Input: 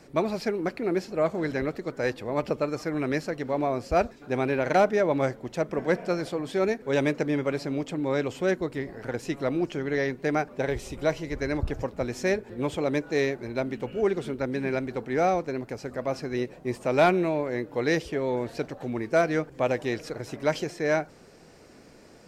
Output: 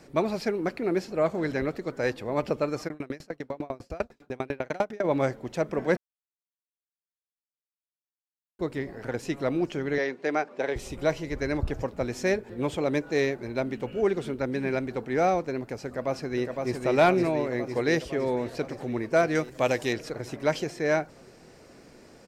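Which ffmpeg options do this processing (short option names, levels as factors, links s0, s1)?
-filter_complex "[0:a]asplit=3[s0][s1][s2];[s0]afade=t=out:st=2.87:d=0.02[s3];[s1]aeval=exprs='val(0)*pow(10,-32*if(lt(mod(10*n/s,1),2*abs(10)/1000),1-mod(10*n/s,1)/(2*abs(10)/1000),(mod(10*n/s,1)-2*abs(10)/1000)/(1-2*abs(10)/1000))/20)':c=same,afade=t=in:st=2.87:d=0.02,afade=t=out:st=5.03:d=0.02[s4];[s2]afade=t=in:st=5.03:d=0.02[s5];[s3][s4][s5]amix=inputs=3:normalize=0,asettb=1/sr,asplit=3[s6][s7][s8];[s6]atrim=end=9.984[s9];[s7]atrim=start=9.98:end=10.76,asetpts=PTS-STARTPTS,afade=t=in:d=0.004:c=qsin,afade=t=out:st=0.776:d=0.004:c=qsin,highpass=310,lowpass=6400[s10];[s8]atrim=start=10.756[s11];[s9][s10]acrossfade=d=0.004:c1=hsin:c2=qsin[s12];[s12][s11]acrossfade=d=0.004:c1=qsin:c2=hsin,asplit=2[s13][s14];[s14]afade=t=in:st=15.86:d=0.01,afade=t=out:st=16.8:d=0.01,aecho=0:1:510|1020|1530|2040|2550|3060|3570|4080|4590|5100|5610|6120:0.668344|0.467841|0.327489|0.229242|0.160469|0.112329|0.07863|0.055041|0.0385287|0.0269701|0.0188791|0.0132153[s15];[s13][s15]amix=inputs=2:normalize=0,asettb=1/sr,asplit=3[s16][s17][s18];[s16]atrim=end=19.354[s19];[s17]atrim=start=19.35:end=19.93,asetpts=PTS-STARTPTS,afade=t=in:d=0.004:c=qsin,afade=t=out:st=0.576:d=0.004:c=qsin,highshelf=f=3100:g=11[s20];[s18]atrim=start=19.926[s21];[s19][s20]acrossfade=d=0.004:c1=hsin:c2=qsin[s22];[s22][s21]acrossfade=d=0.004:c1=qsin:c2=hsin,asplit=3[s23][s24][s25];[s23]atrim=end=5.97,asetpts=PTS-STARTPTS,afade=t=out:st=5.966:d=0.004:c=hsin[s26];[s24]atrim=start=5.97:end=8.59,asetpts=PTS-STARTPTS,volume=0[s27];[s25]atrim=start=8.59,asetpts=PTS-STARTPTS,afade=t=in:d=0.004:c=hsin[s28];[s26][s27][s28]concat=n=3:v=0:a=1"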